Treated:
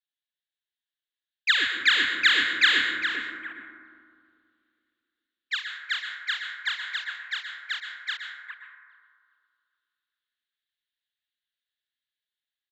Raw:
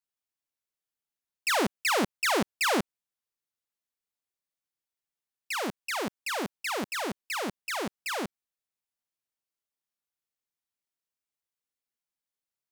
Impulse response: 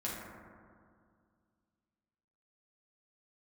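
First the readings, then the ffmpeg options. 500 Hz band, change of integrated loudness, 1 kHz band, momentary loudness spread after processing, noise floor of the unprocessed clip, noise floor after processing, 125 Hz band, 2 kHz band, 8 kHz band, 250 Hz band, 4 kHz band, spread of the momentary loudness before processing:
-16.5 dB, +5.0 dB, -5.5 dB, 18 LU, under -85 dBFS, under -85 dBFS, under -15 dB, +9.0 dB, -8.0 dB, -11.5 dB, +9.5 dB, 7 LU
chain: -filter_complex "[0:a]aeval=exprs='val(0)+0.5*0.0168*sgn(val(0))':c=same,aexciter=amount=2.9:drive=9.3:freq=2700,agate=range=0.0178:threshold=0.126:ratio=16:detection=peak,firequalizer=gain_entry='entry(110,0);entry(180,-26);entry(280,-8);entry(700,-28);entry(1700,14);entry(2400,-2);entry(3700,2);entry(5600,-29);entry(16000,-27)':delay=0.05:min_phase=1,dynaudnorm=f=640:g=5:m=1.78,asplit=2[s0][s1];[s1]adelay=408,lowpass=f=1700:p=1,volume=0.596,asplit=2[s2][s3];[s3]adelay=408,lowpass=f=1700:p=1,volume=0.45,asplit=2[s4][s5];[s5]adelay=408,lowpass=f=1700:p=1,volume=0.45,asplit=2[s6][s7];[s7]adelay=408,lowpass=f=1700:p=1,volume=0.45,asplit=2[s8][s9];[s9]adelay=408,lowpass=f=1700:p=1,volume=0.45,asplit=2[s10][s11];[s11]adelay=408,lowpass=f=1700:p=1,volume=0.45[s12];[s0][s2][s4][s6][s8][s10][s12]amix=inputs=7:normalize=0,afwtdn=0.0141,lowshelf=f=140:g=-8.5,asplit=2[s13][s14];[1:a]atrim=start_sample=2205,adelay=117[s15];[s14][s15]afir=irnorm=-1:irlink=0,volume=0.447[s16];[s13][s16]amix=inputs=2:normalize=0,volume=0.631"

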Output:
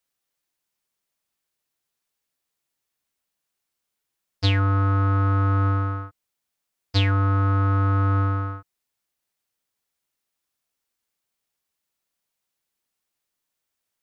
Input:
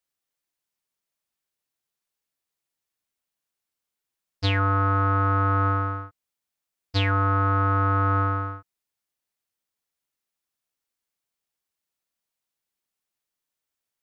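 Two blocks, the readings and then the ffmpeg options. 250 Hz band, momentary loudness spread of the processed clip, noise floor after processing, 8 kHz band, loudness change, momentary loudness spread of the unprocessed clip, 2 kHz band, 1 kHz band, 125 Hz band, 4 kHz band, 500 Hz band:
+2.0 dB, 9 LU, -82 dBFS, no reading, +1.0 dB, 9 LU, -3.0 dB, -4.5 dB, +4.0 dB, +2.0 dB, -2.5 dB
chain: -filter_complex "[0:a]acrossover=split=340|3000[s0][s1][s2];[s1]acompressor=threshold=0.0126:ratio=2[s3];[s0][s3][s2]amix=inputs=3:normalize=0,volume=1.58"

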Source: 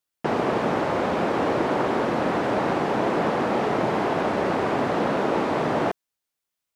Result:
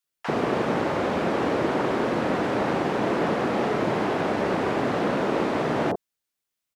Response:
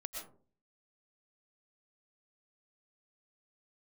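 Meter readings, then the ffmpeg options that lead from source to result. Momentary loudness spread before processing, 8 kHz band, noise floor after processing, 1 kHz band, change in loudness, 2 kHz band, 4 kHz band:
1 LU, 0.0 dB, -84 dBFS, -2.5 dB, -1.0 dB, -0.5 dB, 0.0 dB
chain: -filter_complex "[0:a]acrossover=split=850[s0][s1];[s0]adelay=40[s2];[s2][s1]amix=inputs=2:normalize=0"

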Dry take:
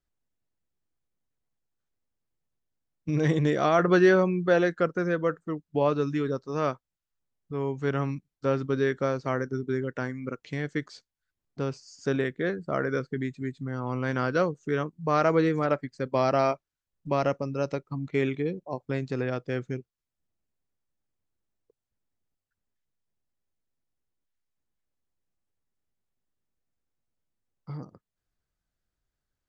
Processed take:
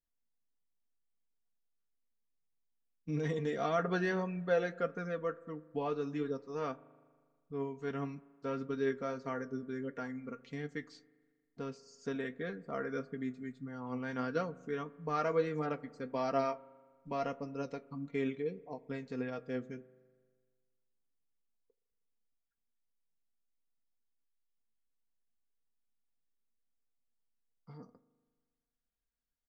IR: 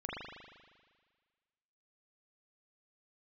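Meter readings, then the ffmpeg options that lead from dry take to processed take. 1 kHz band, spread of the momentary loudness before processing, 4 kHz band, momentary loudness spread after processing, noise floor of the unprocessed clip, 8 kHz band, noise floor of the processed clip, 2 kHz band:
-9.5 dB, 12 LU, -10.0 dB, 12 LU, under -85 dBFS, no reading, -84 dBFS, -10.5 dB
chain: -filter_complex "[0:a]aecho=1:1:4.3:0.63,flanger=delay=6.3:depth=2.7:regen=65:speed=1.6:shape=triangular,asplit=2[s0][s1];[1:a]atrim=start_sample=2205,lowpass=f=1100:p=1[s2];[s1][s2]afir=irnorm=-1:irlink=0,volume=0.133[s3];[s0][s3]amix=inputs=2:normalize=0,volume=0.422"

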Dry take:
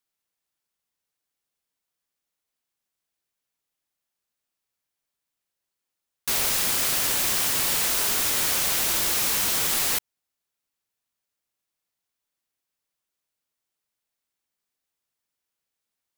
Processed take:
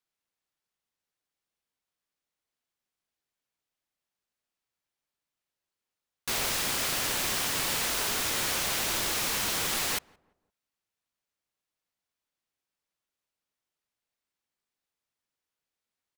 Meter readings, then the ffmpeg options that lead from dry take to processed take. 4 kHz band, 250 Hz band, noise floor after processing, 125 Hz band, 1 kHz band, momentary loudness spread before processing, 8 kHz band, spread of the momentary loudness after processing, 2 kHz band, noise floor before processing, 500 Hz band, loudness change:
-3.5 dB, -1.5 dB, under -85 dBFS, -1.5 dB, -1.5 dB, 2 LU, -6.0 dB, 2 LU, -2.0 dB, -85 dBFS, -1.5 dB, -6.0 dB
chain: -filter_complex "[0:a]highshelf=f=7400:g=-8.5,asplit=2[s0][s1];[s1]adelay=172,lowpass=f=1100:p=1,volume=0.0631,asplit=2[s2][s3];[s3]adelay=172,lowpass=f=1100:p=1,volume=0.42,asplit=2[s4][s5];[s5]adelay=172,lowpass=f=1100:p=1,volume=0.42[s6];[s0][s2][s4][s6]amix=inputs=4:normalize=0,volume=0.841"

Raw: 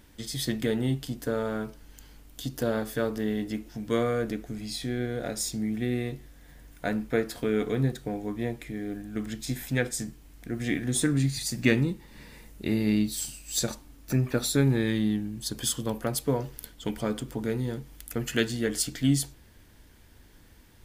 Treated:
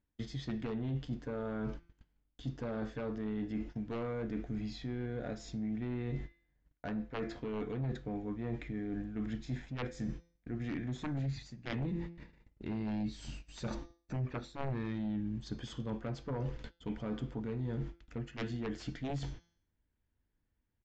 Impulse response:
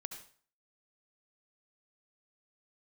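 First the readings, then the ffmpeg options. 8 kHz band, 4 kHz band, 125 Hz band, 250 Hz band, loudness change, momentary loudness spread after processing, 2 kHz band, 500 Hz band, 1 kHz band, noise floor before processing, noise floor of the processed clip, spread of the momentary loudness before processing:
-26.5 dB, -16.0 dB, -8.0 dB, -9.5 dB, -10.5 dB, 6 LU, -14.0 dB, -11.5 dB, -7.5 dB, -54 dBFS, -81 dBFS, 11 LU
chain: -af "agate=range=0.0224:threshold=0.00631:ratio=16:detection=peak,bandreject=f=170.3:t=h:w=4,bandreject=f=340.6:t=h:w=4,bandreject=f=510.9:t=h:w=4,bandreject=f=681.2:t=h:w=4,bandreject=f=851.5:t=h:w=4,bandreject=f=1021.8:t=h:w=4,bandreject=f=1192.1:t=h:w=4,bandreject=f=1362.4:t=h:w=4,bandreject=f=1532.7:t=h:w=4,bandreject=f=1703:t=h:w=4,bandreject=f=1873.3:t=h:w=4,bandreject=f=2043.6:t=h:w=4,bandreject=f=2213.9:t=h:w=4,bandreject=f=2384.2:t=h:w=4,bandreject=f=2554.5:t=h:w=4,bandreject=f=2724.8:t=h:w=4,bandreject=f=2895.1:t=h:w=4,bandreject=f=3065.4:t=h:w=4,bandreject=f=3235.7:t=h:w=4,bandreject=f=3406:t=h:w=4,bandreject=f=3576.3:t=h:w=4,bandreject=f=3746.6:t=h:w=4,bandreject=f=3916.9:t=h:w=4,bandreject=f=4087.2:t=h:w=4,bandreject=f=4257.5:t=h:w=4,bandreject=f=4427.8:t=h:w=4,bandreject=f=4598.1:t=h:w=4,bandreject=f=4768.4:t=h:w=4,bandreject=f=4938.7:t=h:w=4,bandreject=f=5109:t=h:w=4,bandreject=f=5279.3:t=h:w=4,bandreject=f=5449.6:t=h:w=4,bandreject=f=5619.9:t=h:w=4,bandreject=f=5790.2:t=h:w=4,bandreject=f=5960.5:t=h:w=4,bandreject=f=6130.8:t=h:w=4,bandreject=f=6301.1:t=h:w=4,bandreject=f=6471.4:t=h:w=4,aeval=exprs='0.376*(cos(1*acos(clip(val(0)/0.376,-1,1)))-cos(1*PI/2))+0.168*(cos(3*acos(clip(val(0)/0.376,-1,1)))-cos(3*PI/2))':c=same,areverse,acompressor=threshold=0.00316:ratio=10,areverse,bass=f=250:g=4,treble=f=4000:g=-15,aresample=16000,aresample=44100,volume=4.47"

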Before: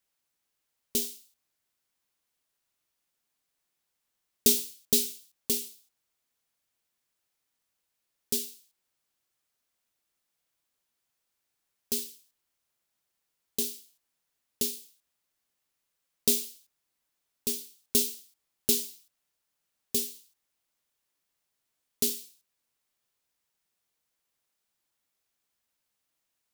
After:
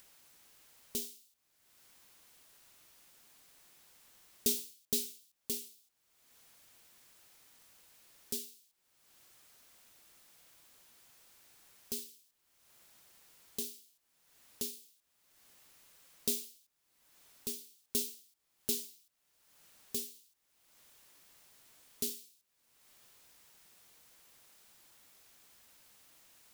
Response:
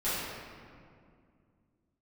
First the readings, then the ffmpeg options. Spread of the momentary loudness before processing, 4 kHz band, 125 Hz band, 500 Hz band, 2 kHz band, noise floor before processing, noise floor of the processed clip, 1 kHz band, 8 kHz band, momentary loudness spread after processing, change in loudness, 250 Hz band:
15 LU, -9.0 dB, -8.5 dB, -9.0 dB, -7.5 dB, -82 dBFS, -78 dBFS, no reading, -9.0 dB, 16 LU, -9.5 dB, -9.0 dB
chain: -af "acompressor=mode=upward:threshold=0.0282:ratio=2.5,volume=0.355"

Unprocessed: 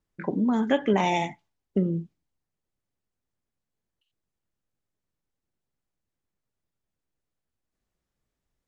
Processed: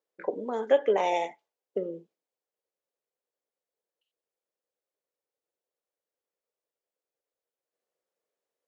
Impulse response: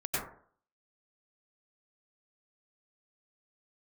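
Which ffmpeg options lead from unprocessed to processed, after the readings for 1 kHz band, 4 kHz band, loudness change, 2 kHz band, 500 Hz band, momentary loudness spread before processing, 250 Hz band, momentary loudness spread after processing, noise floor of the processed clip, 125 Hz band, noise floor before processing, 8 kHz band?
-2.5 dB, -6.0 dB, -2.5 dB, -5.5 dB, +2.5 dB, 9 LU, -14.5 dB, 14 LU, under -85 dBFS, -22.0 dB, under -85 dBFS, no reading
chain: -af "highpass=f=490:t=q:w=4.1,volume=0.501"

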